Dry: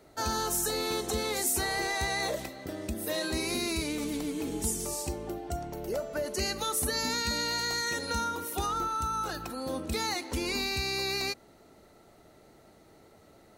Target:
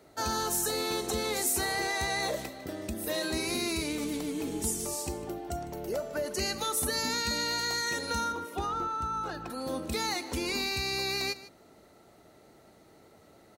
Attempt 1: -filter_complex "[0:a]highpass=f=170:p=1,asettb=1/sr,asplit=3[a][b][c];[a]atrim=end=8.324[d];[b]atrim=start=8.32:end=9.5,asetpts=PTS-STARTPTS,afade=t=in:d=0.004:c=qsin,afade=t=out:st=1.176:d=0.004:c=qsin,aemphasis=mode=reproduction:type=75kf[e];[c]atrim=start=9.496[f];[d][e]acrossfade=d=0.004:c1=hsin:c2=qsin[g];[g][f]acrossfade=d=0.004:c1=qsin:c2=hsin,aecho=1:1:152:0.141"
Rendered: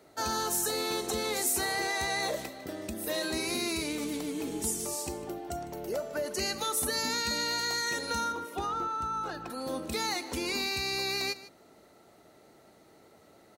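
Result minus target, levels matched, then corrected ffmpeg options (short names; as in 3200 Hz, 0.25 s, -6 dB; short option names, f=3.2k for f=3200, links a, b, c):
125 Hz band -3.5 dB
-filter_complex "[0:a]highpass=f=69:p=1,asettb=1/sr,asplit=3[a][b][c];[a]atrim=end=8.324[d];[b]atrim=start=8.32:end=9.5,asetpts=PTS-STARTPTS,afade=t=in:d=0.004:c=qsin,afade=t=out:st=1.176:d=0.004:c=qsin,aemphasis=mode=reproduction:type=75kf[e];[c]atrim=start=9.496[f];[d][e]acrossfade=d=0.004:c1=hsin:c2=qsin[g];[g][f]acrossfade=d=0.004:c1=qsin:c2=hsin,aecho=1:1:152:0.141"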